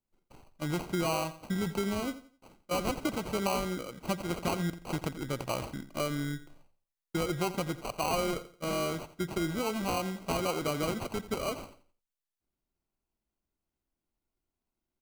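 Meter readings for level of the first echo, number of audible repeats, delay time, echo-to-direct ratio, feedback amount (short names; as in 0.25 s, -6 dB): -15.0 dB, 2, 86 ms, -14.5 dB, 31%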